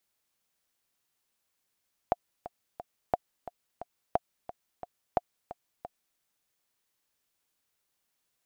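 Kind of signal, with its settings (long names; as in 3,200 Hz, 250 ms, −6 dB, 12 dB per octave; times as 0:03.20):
click track 177 BPM, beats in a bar 3, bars 4, 709 Hz, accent 15 dB −11 dBFS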